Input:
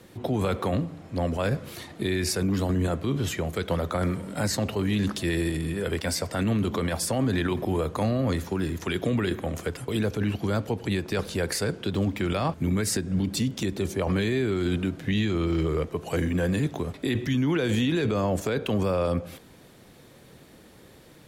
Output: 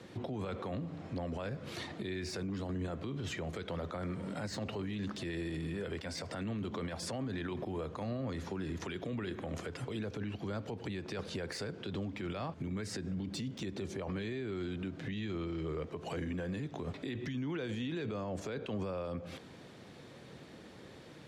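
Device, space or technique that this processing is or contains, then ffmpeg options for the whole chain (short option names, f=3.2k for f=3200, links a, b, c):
podcast mastering chain: -af "highpass=81,lowpass=5.7k,deesser=0.75,acompressor=threshold=-33dB:ratio=3,alimiter=level_in=6dB:limit=-24dB:level=0:latency=1:release=82,volume=-6dB" -ar 48000 -c:a libmp3lame -b:a 96k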